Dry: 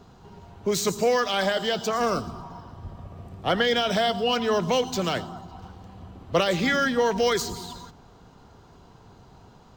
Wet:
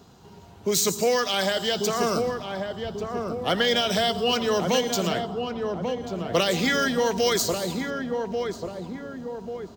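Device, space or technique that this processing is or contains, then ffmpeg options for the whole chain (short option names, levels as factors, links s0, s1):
smiley-face EQ: -filter_complex "[0:a]highpass=f=280:p=1,lowshelf=f=110:g=7,equalizer=f=1100:t=o:w=2.4:g=-5,highshelf=f=6800:g=6.5,asettb=1/sr,asplit=3[s0][s1][s2];[s0]atrim=end=5.074[s3];[s1]atrim=start=5.07:end=6.04,asetpts=PTS-STARTPTS,afade=t=in:d=0.004:c=qsin,afade=t=out:st=0.966:d=0.004:c=qsin,highshelf=f=4100:g=-11[s4];[s2]atrim=start=6.036[s5];[s3][s4]acrossfade=d=0.004:c1=hsin:c2=qsin[s6];[s6][s5]acrossfade=d=0.004:c1=qsin:c2=hsin,asplit=2[s7][s8];[s8]adelay=1140,lowpass=f=960:p=1,volume=0.668,asplit=2[s9][s10];[s10]adelay=1140,lowpass=f=960:p=1,volume=0.55,asplit=2[s11][s12];[s12]adelay=1140,lowpass=f=960:p=1,volume=0.55,asplit=2[s13][s14];[s14]adelay=1140,lowpass=f=960:p=1,volume=0.55,asplit=2[s15][s16];[s16]adelay=1140,lowpass=f=960:p=1,volume=0.55,asplit=2[s17][s18];[s18]adelay=1140,lowpass=f=960:p=1,volume=0.55,asplit=2[s19][s20];[s20]adelay=1140,lowpass=f=960:p=1,volume=0.55,asplit=2[s21][s22];[s22]adelay=1140,lowpass=f=960:p=1,volume=0.55[s23];[s7][s9][s11][s13][s15][s17][s19][s21][s23]amix=inputs=9:normalize=0,volume=1.41"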